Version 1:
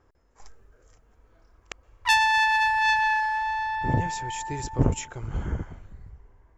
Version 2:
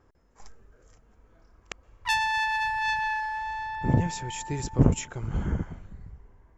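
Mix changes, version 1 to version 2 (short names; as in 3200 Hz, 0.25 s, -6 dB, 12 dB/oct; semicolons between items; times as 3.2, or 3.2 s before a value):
background -5.5 dB; master: add bell 190 Hz +6 dB 0.9 oct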